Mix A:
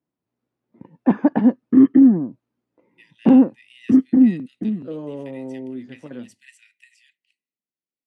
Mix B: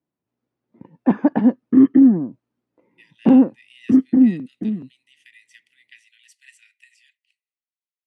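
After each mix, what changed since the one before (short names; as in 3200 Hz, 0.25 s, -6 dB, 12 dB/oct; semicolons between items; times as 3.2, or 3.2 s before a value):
second voice: muted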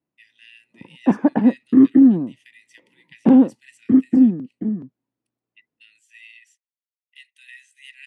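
speech: entry -2.80 s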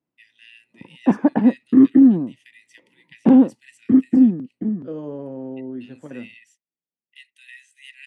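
second voice: unmuted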